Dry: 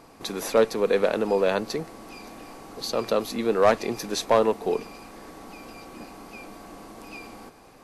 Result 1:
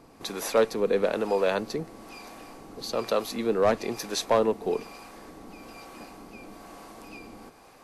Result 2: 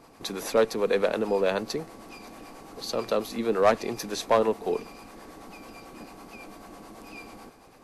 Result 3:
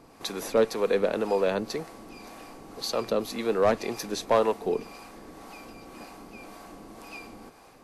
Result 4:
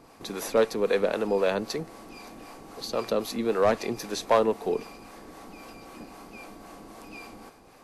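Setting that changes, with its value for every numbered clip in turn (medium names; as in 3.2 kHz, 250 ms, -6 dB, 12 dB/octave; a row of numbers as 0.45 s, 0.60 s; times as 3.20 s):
harmonic tremolo, rate: 1.1 Hz, 9.1 Hz, 1.9 Hz, 3.8 Hz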